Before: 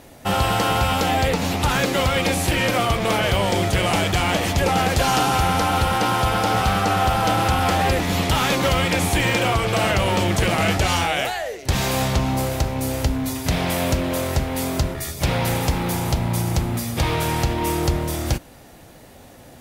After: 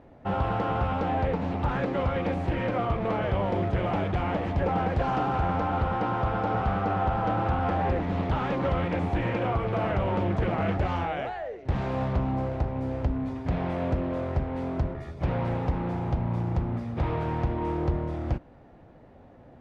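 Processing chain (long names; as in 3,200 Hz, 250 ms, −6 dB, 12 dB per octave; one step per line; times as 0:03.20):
Bessel low-pass filter 1,100 Hz, order 2
highs frequency-modulated by the lows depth 0.27 ms
level −5.5 dB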